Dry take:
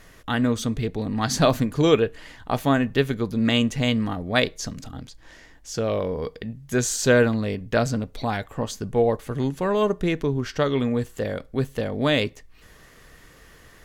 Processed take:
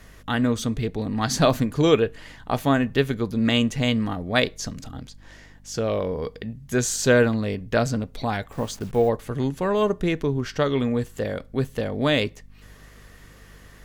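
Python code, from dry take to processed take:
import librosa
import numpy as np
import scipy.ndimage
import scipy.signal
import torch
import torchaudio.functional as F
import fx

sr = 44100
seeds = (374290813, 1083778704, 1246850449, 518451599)

y = fx.delta_hold(x, sr, step_db=-42.0, at=(8.52, 9.09))
y = fx.add_hum(y, sr, base_hz=50, snr_db=26)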